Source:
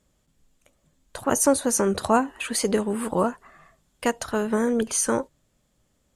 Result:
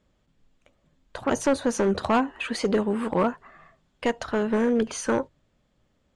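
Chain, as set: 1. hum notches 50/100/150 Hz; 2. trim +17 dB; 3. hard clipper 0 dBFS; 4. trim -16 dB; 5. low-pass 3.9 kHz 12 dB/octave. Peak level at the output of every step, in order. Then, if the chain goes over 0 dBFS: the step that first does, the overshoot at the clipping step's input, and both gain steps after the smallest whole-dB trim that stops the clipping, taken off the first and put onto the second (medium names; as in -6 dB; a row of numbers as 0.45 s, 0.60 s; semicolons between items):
-7.0 dBFS, +10.0 dBFS, 0.0 dBFS, -16.0 dBFS, -15.5 dBFS; step 2, 10.0 dB; step 2 +7 dB, step 4 -6 dB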